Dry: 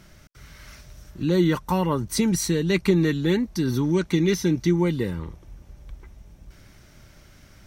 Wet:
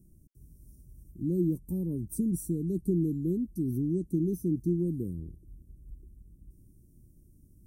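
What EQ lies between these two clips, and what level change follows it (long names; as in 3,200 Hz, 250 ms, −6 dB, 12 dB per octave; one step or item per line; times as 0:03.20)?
elliptic band-stop filter 330–9,400 Hz, stop band 80 dB
−6.0 dB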